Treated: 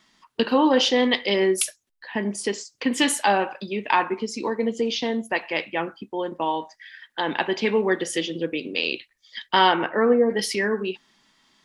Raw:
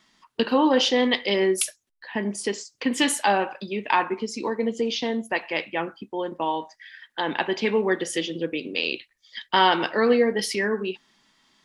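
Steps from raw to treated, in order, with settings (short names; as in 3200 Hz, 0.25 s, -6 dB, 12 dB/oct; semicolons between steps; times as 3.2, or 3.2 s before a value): 9.71–10.29 LPF 2900 Hz -> 1200 Hz 24 dB/oct; gain +1 dB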